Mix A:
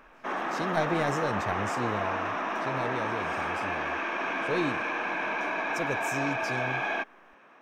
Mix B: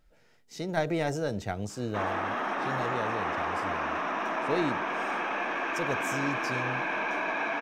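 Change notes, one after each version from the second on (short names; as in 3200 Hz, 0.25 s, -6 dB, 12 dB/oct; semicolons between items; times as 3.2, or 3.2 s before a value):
background: entry +1.70 s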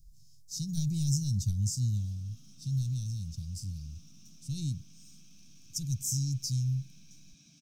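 speech +10.5 dB; master: add elliptic band-stop 140–5500 Hz, stop band 50 dB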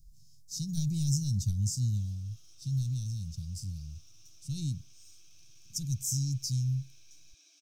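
background: add steep high-pass 320 Hz 72 dB/oct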